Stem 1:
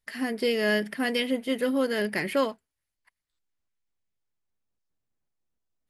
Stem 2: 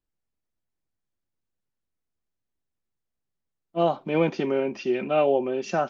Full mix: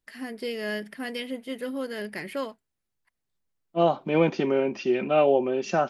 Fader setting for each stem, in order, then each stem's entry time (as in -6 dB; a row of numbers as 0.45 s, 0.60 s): -6.5 dB, +1.0 dB; 0.00 s, 0.00 s